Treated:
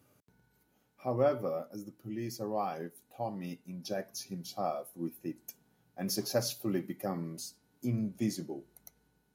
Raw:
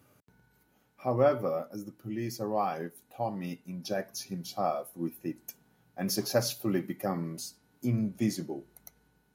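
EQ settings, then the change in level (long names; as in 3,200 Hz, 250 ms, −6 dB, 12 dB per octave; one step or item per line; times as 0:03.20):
low-shelf EQ 290 Hz −4.5 dB
parametric band 1,500 Hz −5.5 dB 2.7 octaves
high-shelf EQ 8,400 Hz −3.5 dB
0.0 dB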